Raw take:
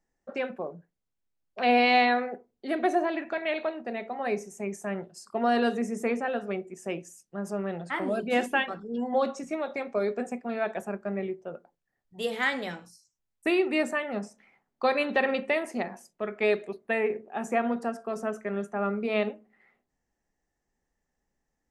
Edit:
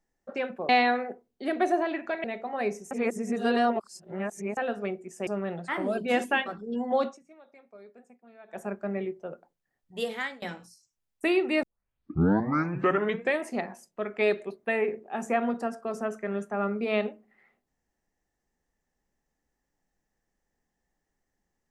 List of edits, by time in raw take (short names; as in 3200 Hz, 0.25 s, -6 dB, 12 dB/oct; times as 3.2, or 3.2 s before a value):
0.69–1.92 cut
3.47–3.9 cut
4.57–6.23 reverse
6.93–7.49 cut
9.26–10.85 dip -22 dB, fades 0.15 s
12.23–12.64 fade out, to -23.5 dB
13.85 tape start 1.81 s